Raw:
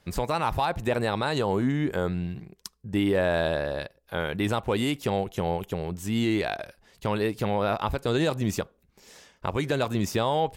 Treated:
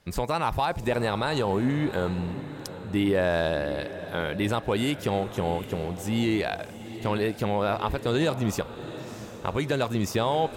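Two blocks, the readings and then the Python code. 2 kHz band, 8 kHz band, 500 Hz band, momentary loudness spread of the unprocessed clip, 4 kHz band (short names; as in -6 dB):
+0.5 dB, 0.0 dB, 0.0 dB, 9 LU, 0.0 dB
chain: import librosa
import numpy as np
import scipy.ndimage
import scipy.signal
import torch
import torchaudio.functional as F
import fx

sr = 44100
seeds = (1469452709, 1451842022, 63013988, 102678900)

y = fx.echo_diffused(x, sr, ms=731, feedback_pct=48, wet_db=-13.0)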